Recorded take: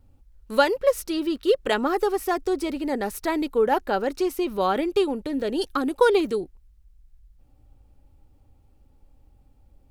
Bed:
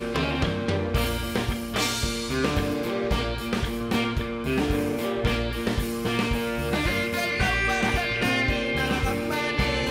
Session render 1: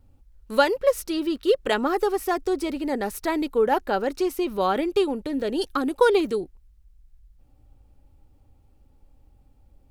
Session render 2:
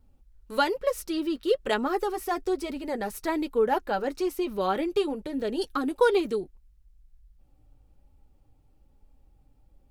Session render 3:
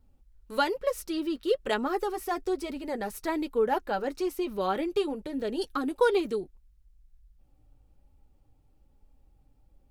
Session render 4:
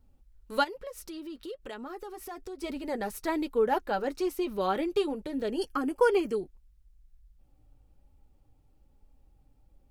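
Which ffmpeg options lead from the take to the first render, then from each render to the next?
ffmpeg -i in.wav -af anull out.wav
ffmpeg -i in.wav -af "flanger=delay=4.6:depth=2.2:regen=-44:speed=1.1:shape=sinusoidal" out.wav
ffmpeg -i in.wav -af "volume=-2dB" out.wav
ffmpeg -i in.wav -filter_complex "[0:a]asplit=3[link_01][link_02][link_03];[link_01]afade=type=out:start_time=0.63:duration=0.02[link_04];[link_02]acompressor=threshold=-41dB:ratio=3:attack=3.2:release=140:knee=1:detection=peak,afade=type=in:start_time=0.63:duration=0.02,afade=type=out:start_time=2.62:duration=0.02[link_05];[link_03]afade=type=in:start_time=2.62:duration=0.02[link_06];[link_04][link_05][link_06]amix=inputs=3:normalize=0,asettb=1/sr,asplit=3[link_07][link_08][link_09];[link_07]atrim=end=5.514[link_10];[link_08]atrim=start=5.51:end=6.36,asetpts=PTS-STARTPTS,afade=type=in:duration=0.004:curve=qsin,afade=type=out:start_time=0.846:duration=0.004:curve=qsin,asuperstop=centerf=3800:order=4:qfactor=3.5[link_11];[link_09]atrim=start=6.356[link_12];[link_10][link_11]acrossfade=duration=0.004:curve1=hsin:curve2=qsin[link_13];[link_13][link_12]acrossfade=duration=0.004:curve1=qsin:curve2=hsin" out.wav

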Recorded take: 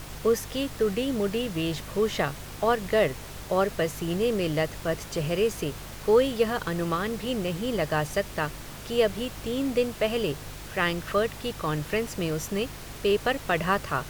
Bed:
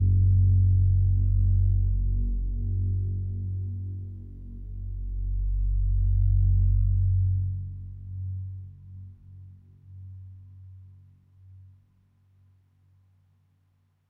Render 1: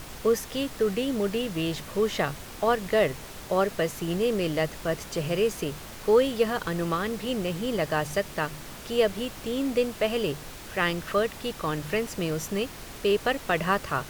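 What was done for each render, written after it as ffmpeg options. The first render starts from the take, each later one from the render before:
ffmpeg -i in.wav -af "bandreject=frequency=50:width_type=h:width=4,bandreject=frequency=100:width_type=h:width=4,bandreject=frequency=150:width_type=h:width=4" out.wav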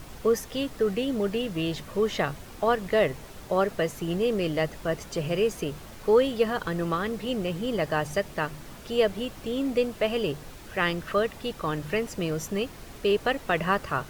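ffmpeg -i in.wav -af "afftdn=noise_reduction=6:noise_floor=-42" out.wav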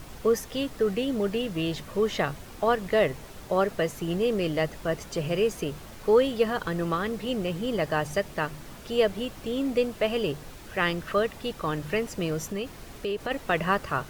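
ffmpeg -i in.wav -filter_complex "[0:a]asplit=3[link_01][link_02][link_03];[link_01]afade=type=out:start_time=12.45:duration=0.02[link_04];[link_02]acompressor=threshold=-28dB:ratio=3:attack=3.2:release=140:knee=1:detection=peak,afade=type=in:start_time=12.45:duration=0.02,afade=type=out:start_time=13.3:duration=0.02[link_05];[link_03]afade=type=in:start_time=13.3:duration=0.02[link_06];[link_04][link_05][link_06]amix=inputs=3:normalize=0" out.wav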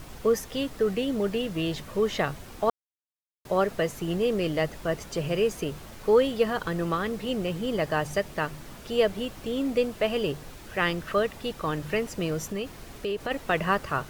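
ffmpeg -i in.wav -filter_complex "[0:a]asplit=3[link_01][link_02][link_03];[link_01]atrim=end=2.7,asetpts=PTS-STARTPTS,afade=type=out:start_time=2.696:duration=0.004:curve=hsin[link_04];[link_02]atrim=start=2.7:end=3.45,asetpts=PTS-STARTPTS,volume=0[link_05];[link_03]atrim=start=3.45,asetpts=PTS-STARTPTS,afade=type=in:duration=0.004:curve=hsin[link_06];[link_04][link_05][link_06]concat=n=3:v=0:a=1" out.wav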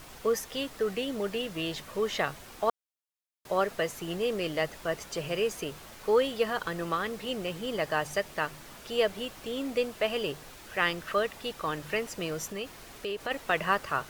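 ffmpeg -i in.wav -af "lowshelf=frequency=390:gain=-10" out.wav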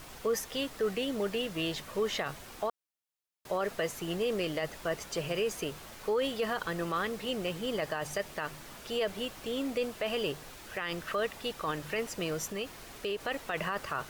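ffmpeg -i in.wav -af "alimiter=limit=-22.5dB:level=0:latency=1:release=20" out.wav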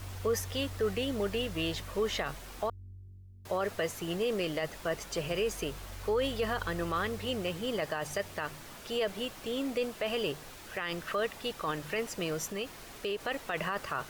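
ffmpeg -i in.wav -i bed.wav -filter_complex "[1:a]volume=-22dB[link_01];[0:a][link_01]amix=inputs=2:normalize=0" out.wav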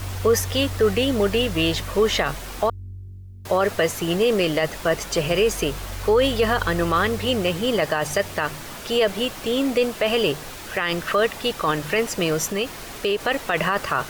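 ffmpeg -i in.wav -af "volume=12dB" out.wav

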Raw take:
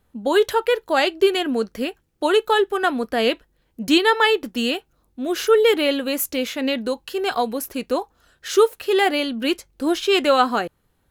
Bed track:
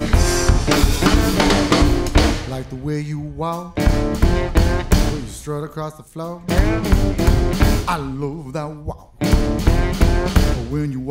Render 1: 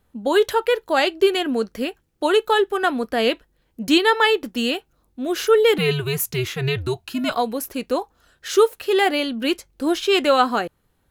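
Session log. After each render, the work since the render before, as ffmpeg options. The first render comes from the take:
ffmpeg -i in.wav -filter_complex "[0:a]asettb=1/sr,asplit=3[link_01][link_02][link_03];[link_01]atrim=end=5.784[link_04];[link_02]atrim=start=5.78:end=7.35,asetpts=PTS-STARTPTS,afade=type=in:duration=0.004:curve=qsin,afade=type=out:start_time=1.566:duration=0.004:curve=qsin,afreqshift=-130[link_05];[link_03]atrim=start=7.346[link_06];[link_04][link_05]acrossfade=duration=0.004:curve1=hsin:curve2=qsin[link_07];[link_07][link_06]acrossfade=duration=0.004:curve1=qsin:curve2=hsin" out.wav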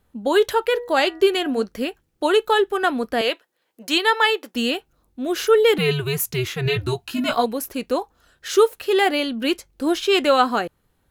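ffmpeg -i in.wav -filter_complex "[0:a]asettb=1/sr,asplit=3[link_01][link_02][link_03];[link_01]atrim=end=0.654[link_04];[link_02]atrim=start=0.65:end=1.64,asetpts=PTS-STARTPTS,afade=type=in:duration=0.004:curve=qsin,afade=type=out:start_time=0.986:duration=0.004:curve=qsin,bandreject=frequency=241.4:width_type=h:width=4,bandreject=frequency=482.8:width_type=h:width=4,bandreject=frequency=724.2:width_type=h:width=4,bandreject=frequency=965.6:width_type=h:width=4,bandreject=frequency=1207:width_type=h:width=4,bandreject=frequency=1448.4:width_type=h:width=4,bandreject=frequency=1689.8:width_type=h:width=4,bandreject=frequency=1931.2:width_type=h:width=4[link_05];[link_03]atrim=start=1.636[link_06];[link_04][link_05]acrossfade=duration=0.004:curve1=hsin:curve2=qsin[link_07];[link_07][link_06]acrossfade=duration=0.004:curve1=qsin:curve2=hsin,asettb=1/sr,asplit=3[link_08][link_09][link_10];[link_08]atrim=end=3.214[link_11];[link_09]atrim=start=3.21:end=4.55,asetpts=PTS-STARTPTS,afade=type=in:duration=0.004:curve=qsin,afade=type=out:start_time=1.336:duration=0.004:curve=qsin,highpass=490[link_12];[link_10]atrim=start=4.546[link_13];[link_11][link_12]acrossfade=duration=0.004:curve1=hsin:curve2=qsin[link_14];[link_14][link_13]acrossfade=duration=0.004:curve1=qsin:curve2=hsin,asettb=1/sr,asplit=3[link_15][link_16][link_17];[link_15]atrim=end=6.644[link_18];[link_16]atrim=start=6.64:end=7.46,asetpts=PTS-STARTPTS,afade=type=in:duration=0.004:curve=qsin,afade=type=out:start_time=0.816:duration=0.004:curve=qsin,asplit=2[link_19][link_20];[link_20]adelay=17,volume=-2.5dB[link_21];[link_19][link_21]amix=inputs=2:normalize=0,atrim=end_sample=36162[link_22];[link_17]atrim=start=7.456[link_23];[link_18][link_22]acrossfade=duration=0.004:curve1=hsin:curve2=qsin[link_24];[link_24][link_23]acrossfade=duration=0.004:curve1=qsin:curve2=hsin" out.wav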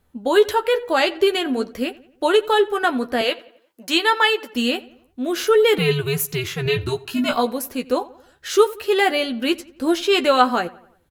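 ffmpeg -i in.wav -filter_complex "[0:a]asplit=2[link_01][link_02];[link_02]adelay=12,volume=-7.5dB[link_03];[link_01][link_03]amix=inputs=2:normalize=0,asplit=2[link_04][link_05];[link_05]adelay=89,lowpass=frequency=3200:poles=1,volume=-20dB,asplit=2[link_06][link_07];[link_07]adelay=89,lowpass=frequency=3200:poles=1,volume=0.49,asplit=2[link_08][link_09];[link_09]adelay=89,lowpass=frequency=3200:poles=1,volume=0.49,asplit=2[link_10][link_11];[link_11]adelay=89,lowpass=frequency=3200:poles=1,volume=0.49[link_12];[link_04][link_06][link_08][link_10][link_12]amix=inputs=5:normalize=0" out.wav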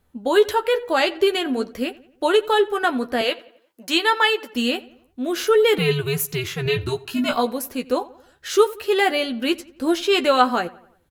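ffmpeg -i in.wav -af "volume=-1dB" out.wav

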